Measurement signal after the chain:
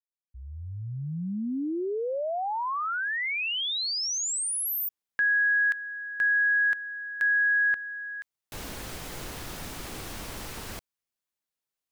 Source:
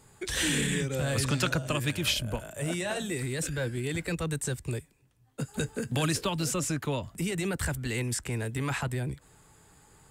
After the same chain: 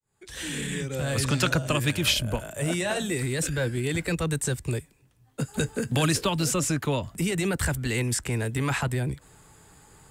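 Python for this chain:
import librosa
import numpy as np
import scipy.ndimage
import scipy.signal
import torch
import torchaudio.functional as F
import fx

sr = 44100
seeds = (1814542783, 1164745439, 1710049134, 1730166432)

y = fx.fade_in_head(x, sr, length_s=1.56)
y = y * librosa.db_to_amplitude(4.5)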